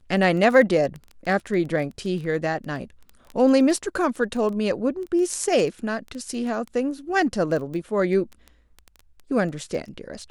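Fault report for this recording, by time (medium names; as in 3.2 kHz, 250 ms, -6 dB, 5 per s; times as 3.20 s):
crackle 10 per s -29 dBFS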